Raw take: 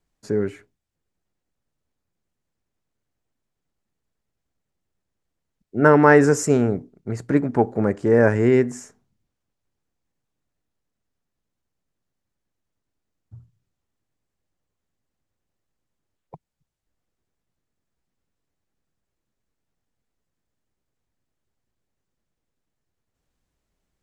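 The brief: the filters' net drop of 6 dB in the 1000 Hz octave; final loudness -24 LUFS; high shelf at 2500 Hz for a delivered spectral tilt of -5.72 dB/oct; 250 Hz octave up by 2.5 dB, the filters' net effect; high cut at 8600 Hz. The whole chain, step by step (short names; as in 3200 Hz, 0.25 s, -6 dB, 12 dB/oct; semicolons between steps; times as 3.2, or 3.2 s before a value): LPF 8600 Hz; bell 250 Hz +3.5 dB; bell 1000 Hz -7.5 dB; high shelf 2500 Hz -4 dB; gain -5.5 dB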